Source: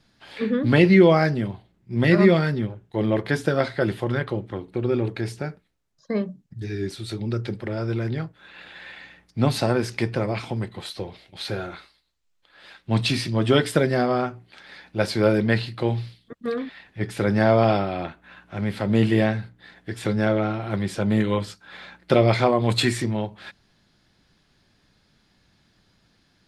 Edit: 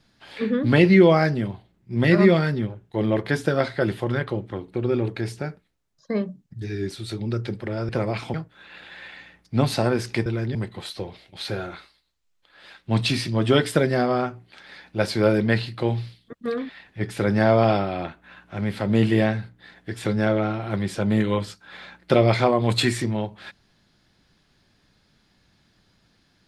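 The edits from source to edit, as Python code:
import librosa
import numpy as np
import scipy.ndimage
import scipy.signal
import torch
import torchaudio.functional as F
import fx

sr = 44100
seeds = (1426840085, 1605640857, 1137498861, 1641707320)

y = fx.edit(x, sr, fx.swap(start_s=7.89, length_s=0.29, other_s=10.1, other_length_s=0.45), tone=tone)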